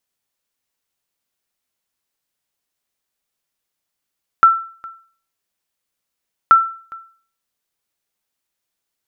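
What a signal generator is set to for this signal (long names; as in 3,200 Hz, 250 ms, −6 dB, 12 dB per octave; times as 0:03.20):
ping with an echo 1,340 Hz, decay 0.45 s, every 2.08 s, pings 2, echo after 0.41 s, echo −24 dB −2 dBFS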